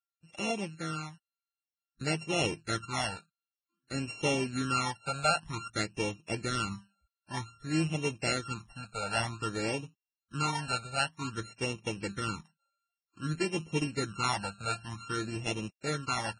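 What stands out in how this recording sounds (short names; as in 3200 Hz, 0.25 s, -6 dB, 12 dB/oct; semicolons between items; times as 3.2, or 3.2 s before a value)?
a buzz of ramps at a fixed pitch in blocks of 32 samples; phasing stages 12, 0.53 Hz, lowest notch 320–1500 Hz; Vorbis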